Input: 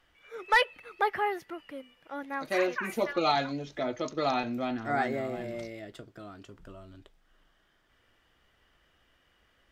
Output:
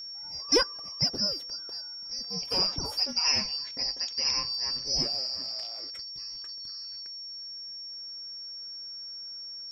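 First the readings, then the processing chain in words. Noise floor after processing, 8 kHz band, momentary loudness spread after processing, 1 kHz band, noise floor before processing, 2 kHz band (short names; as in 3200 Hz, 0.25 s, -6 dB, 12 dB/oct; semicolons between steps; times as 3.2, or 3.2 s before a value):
-41 dBFS, +17.0 dB, 13 LU, -12.0 dB, -69 dBFS, -8.5 dB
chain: four-band scrambler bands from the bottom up 2341; whine 5500 Hz -38 dBFS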